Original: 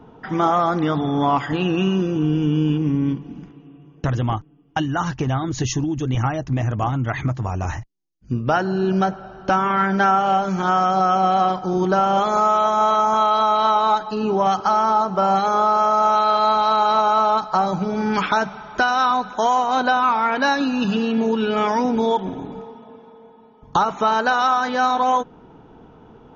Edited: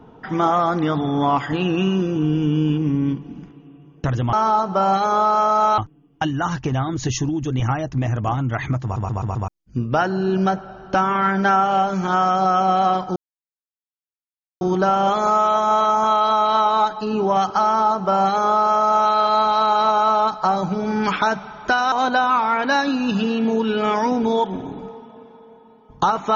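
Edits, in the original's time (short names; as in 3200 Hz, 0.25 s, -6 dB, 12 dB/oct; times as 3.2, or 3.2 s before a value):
7.38 stutter in place 0.13 s, 5 plays
11.71 insert silence 1.45 s
14.75–16.2 copy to 4.33
19.02–19.65 cut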